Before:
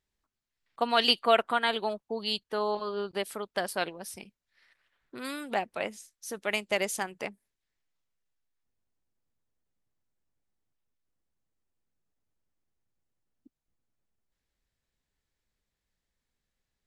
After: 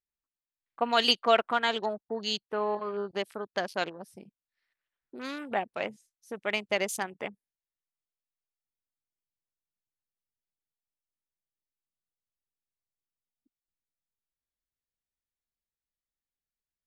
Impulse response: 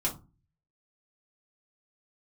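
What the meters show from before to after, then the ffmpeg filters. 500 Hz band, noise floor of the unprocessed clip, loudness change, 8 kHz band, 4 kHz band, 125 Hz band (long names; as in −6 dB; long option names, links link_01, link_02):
0.0 dB, below −85 dBFS, 0.0 dB, −2.5 dB, 0.0 dB, 0.0 dB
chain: -af "afwtdn=0.00631"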